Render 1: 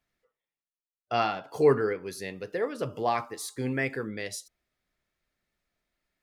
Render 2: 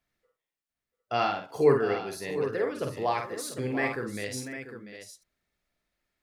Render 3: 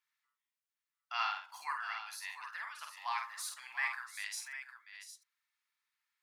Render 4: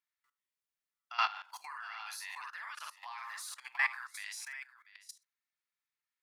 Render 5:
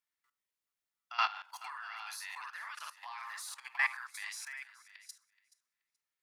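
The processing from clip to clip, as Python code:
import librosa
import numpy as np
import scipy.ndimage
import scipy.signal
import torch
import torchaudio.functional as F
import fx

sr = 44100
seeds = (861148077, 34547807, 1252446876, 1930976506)

y1 = fx.echo_multitap(x, sr, ms=(49, 691, 754), db=(-5.0, -13.0, -10.0))
y1 = F.gain(torch.from_numpy(y1), -1.0).numpy()
y2 = scipy.signal.sosfilt(scipy.signal.ellip(4, 1.0, 50, 940.0, 'highpass', fs=sr, output='sos'), y1)
y2 = F.gain(torch.from_numpy(y2), -3.0).numpy()
y3 = fx.level_steps(y2, sr, step_db=17)
y3 = F.gain(torch.from_numpy(y3), 6.5).numpy()
y4 = fx.echo_thinned(y3, sr, ms=427, feedback_pct=16, hz=420.0, wet_db=-19.0)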